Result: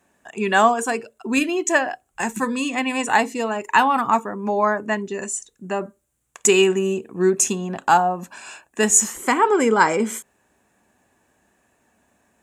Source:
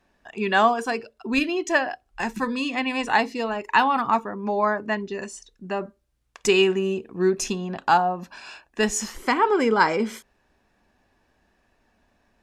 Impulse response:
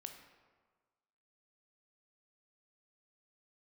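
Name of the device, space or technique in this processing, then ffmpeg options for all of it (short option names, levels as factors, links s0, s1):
budget condenser microphone: -af "highpass=96,highshelf=f=6100:t=q:w=3:g=7,volume=1.41"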